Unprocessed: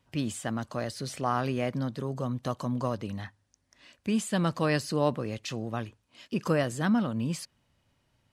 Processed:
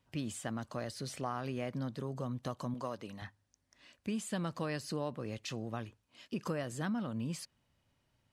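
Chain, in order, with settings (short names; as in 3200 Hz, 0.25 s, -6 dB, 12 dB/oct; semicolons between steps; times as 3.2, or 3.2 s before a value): 2.74–3.22 HPF 360 Hz 6 dB/oct; compressor 4:1, threshold -28 dBFS, peak gain reduction 8 dB; gain -5 dB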